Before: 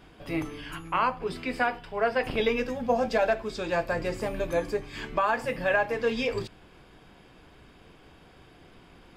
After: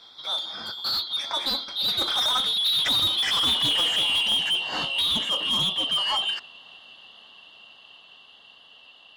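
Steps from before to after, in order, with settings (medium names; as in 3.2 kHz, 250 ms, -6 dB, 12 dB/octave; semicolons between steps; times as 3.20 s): four frequency bands reordered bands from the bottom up 2413; Doppler pass-by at 3.44 s, 30 m/s, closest 20 m; overdrive pedal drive 26 dB, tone 2.6 kHz, clips at -15 dBFS; trim +2.5 dB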